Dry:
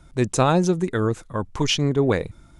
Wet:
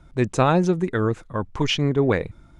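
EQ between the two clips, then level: LPF 2800 Hz 6 dB/oct; dynamic EQ 2100 Hz, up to +4 dB, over -39 dBFS, Q 1.2; 0.0 dB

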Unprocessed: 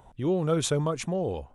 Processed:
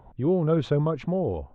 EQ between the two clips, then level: dynamic EQ 3800 Hz, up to +4 dB, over -47 dBFS, Q 1.6; tape spacing loss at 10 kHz 45 dB; +4.5 dB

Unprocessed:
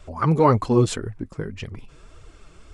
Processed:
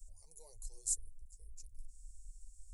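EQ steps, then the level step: inverse Chebyshev band-stop 120–3300 Hz, stop band 50 dB; tone controls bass -11 dB, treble -5 dB; fixed phaser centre 530 Hz, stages 4; +8.0 dB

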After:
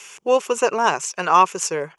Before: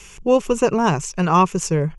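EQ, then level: HPF 550 Hz 12 dB/oct; bell 1500 Hz +2.5 dB 0.23 oct; +2.5 dB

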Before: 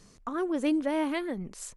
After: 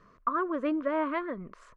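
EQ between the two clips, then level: Butterworth band-stop 820 Hz, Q 2.7; synth low-pass 1100 Hz, resonance Q 2.3; tilt shelf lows -7.5 dB, about 840 Hz; +1.5 dB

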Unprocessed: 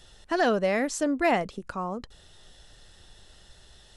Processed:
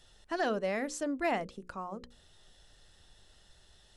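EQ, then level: notches 60/120/180/240/300/360/420/480/540 Hz; -7.5 dB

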